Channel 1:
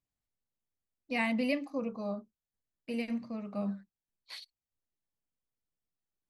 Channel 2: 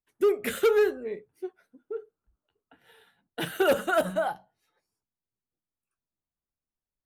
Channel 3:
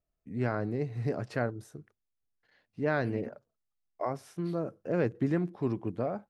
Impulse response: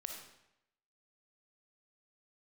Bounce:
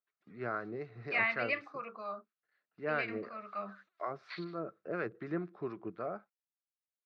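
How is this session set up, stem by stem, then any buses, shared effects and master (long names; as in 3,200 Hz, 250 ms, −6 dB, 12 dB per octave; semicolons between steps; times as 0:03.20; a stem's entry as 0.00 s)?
0.0 dB, 0.00 s, no send, high-pass filter 470 Hz 6 dB per octave; parametric band 1,800 Hz +9 dB 2.1 octaves
−14.0 dB, 0.00 s, no send, brickwall limiter −26 dBFS, peak gain reduction 10.5 dB; every bin compressed towards the loudest bin 10 to 1; automatic ducking −11 dB, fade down 0.40 s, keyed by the third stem
−1.0 dB, 0.00 s, no send, no processing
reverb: not used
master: noise gate −57 dBFS, range −10 dB; two-band tremolo in antiphase 4.1 Hz, depth 50%, crossover 870 Hz; loudspeaker in its box 250–4,000 Hz, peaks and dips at 260 Hz −10 dB, 510 Hz −5 dB, 870 Hz −7 dB, 1,300 Hz +9 dB, 3,100 Hz −8 dB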